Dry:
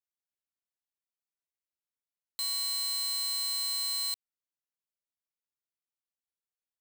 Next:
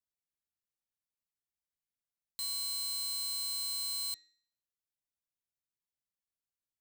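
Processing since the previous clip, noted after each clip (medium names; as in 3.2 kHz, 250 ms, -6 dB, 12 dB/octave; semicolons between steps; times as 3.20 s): tone controls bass +11 dB, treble +4 dB; de-hum 315 Hz, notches 25; trim -7 dB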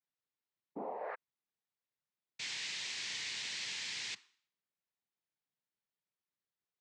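painted sound rise, 0.75–1.15 s, 380–970 Hz -44 dBFS; noise-vocoded speech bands 6; low-pass 3.7 kHz 12 dB/octave; trim +3 dB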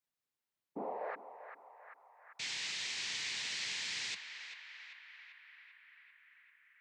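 band-passed feedback delay 392 ms, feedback 77%, band-pass 1.6 kHz, level -7 dB; trim +1 dB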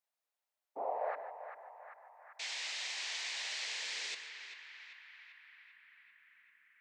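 high-pass sweep 640 Hz -> 200 Hz, 3.47–5.72 s; gated-style reverb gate 170 ms rising, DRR 11.5 dB; trim -1.5 dB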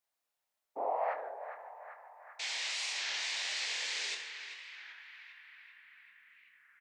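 early reflections 26 ms -7 dB, 72 ms -11.5 dB; warped record 33 1/3 rpm, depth 160 cents; trim +2.5 dB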